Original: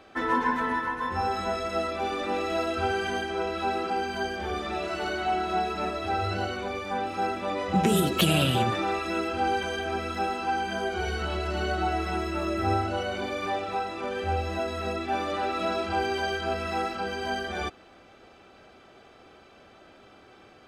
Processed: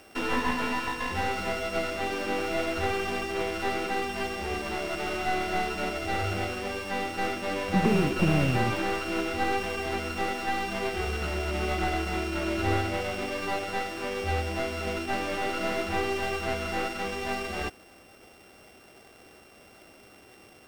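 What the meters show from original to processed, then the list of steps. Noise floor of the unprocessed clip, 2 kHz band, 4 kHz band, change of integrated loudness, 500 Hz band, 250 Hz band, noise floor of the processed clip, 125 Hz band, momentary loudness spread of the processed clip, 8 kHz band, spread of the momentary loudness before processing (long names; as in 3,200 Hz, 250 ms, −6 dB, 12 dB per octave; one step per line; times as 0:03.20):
−54 dBFS, +0.5 dB, −2.0 dB, −1.0 dB, −1.0 dB, 0.0 dB, −54 dBFS, 0.0 dB, 6 LU, −0.5 dB, 6 LU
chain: samples sorted by size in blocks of 16 samples
slew-rate limiting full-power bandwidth 81 Hz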